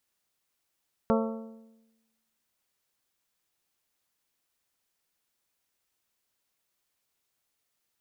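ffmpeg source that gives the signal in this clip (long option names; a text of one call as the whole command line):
ffmpeg -f lavfi -i "aevalsrc='0.075*pow(10,-3*t/1.08)*sin(2*PI*224*t)+0.0596*pow(10,-3*t/0.877)*sin(2*PI*448*t)+0.0473*pow(10,-3*t/0.831)*sin(2*PI*537.6*t)+0.0376*pow(10,-3*t/0.777)*sin(2*PI*672*t)+0.0299*pow(10,-3*t/0.713)*sin(2*PI*896*t)+0.0237*pow(10,-3*t/0.666)*sin(2*PI*1120*t)+0.0188*pow(10,-3*t/0.631)*sin(2*PI*1344*t)':duration=1.55:sample_rate=44100" out.wav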